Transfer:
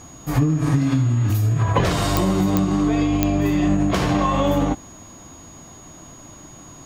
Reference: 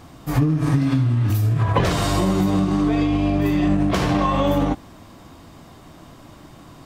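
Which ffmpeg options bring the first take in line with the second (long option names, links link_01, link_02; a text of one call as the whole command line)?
ffmpeg -i in.wav -af "adeclick=threshold=4,bandreject=frequency=6700:width=30" out.wav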